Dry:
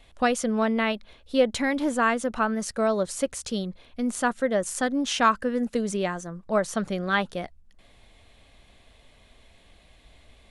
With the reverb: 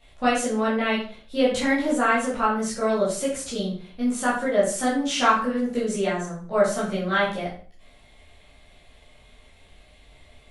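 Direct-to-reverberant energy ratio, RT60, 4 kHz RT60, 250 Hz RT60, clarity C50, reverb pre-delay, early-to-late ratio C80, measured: -9.5 dB, 0.45 s, 0.35 s, 0.50 s, 4.5 dB, 12 ms, 9.5 dB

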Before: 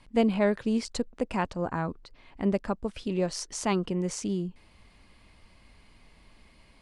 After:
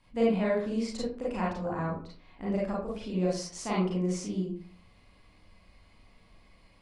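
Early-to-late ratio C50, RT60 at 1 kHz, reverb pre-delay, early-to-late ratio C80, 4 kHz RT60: 1.5 dB, 0.45 s, 33 ms, 8.5 dB, 0.25 s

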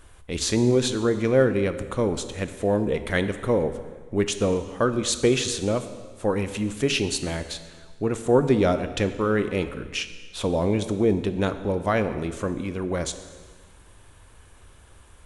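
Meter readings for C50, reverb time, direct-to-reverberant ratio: 11.5 dB, 1.5 s, 10.0 dB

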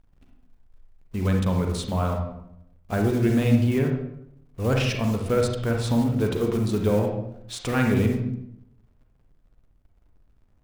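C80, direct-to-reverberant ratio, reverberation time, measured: 7.0 dB, 2.0 dB, 0.75 s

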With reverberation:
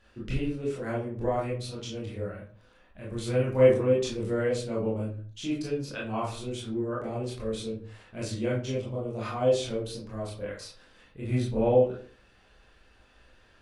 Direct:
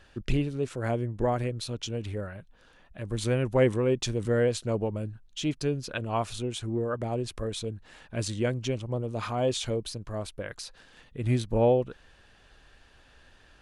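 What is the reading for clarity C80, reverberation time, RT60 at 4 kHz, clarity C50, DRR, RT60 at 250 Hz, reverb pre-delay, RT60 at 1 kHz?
10.0 dB, 0.45 s, 0.25 s, 4.0 dB, -7.0 dB, 0.55 s, 20 ms, 0.45 s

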